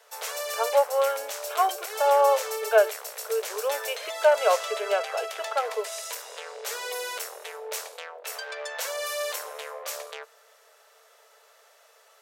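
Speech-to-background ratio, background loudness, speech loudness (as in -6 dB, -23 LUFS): 8.0 dB, -33.5 LUFS, -25.5 LUFS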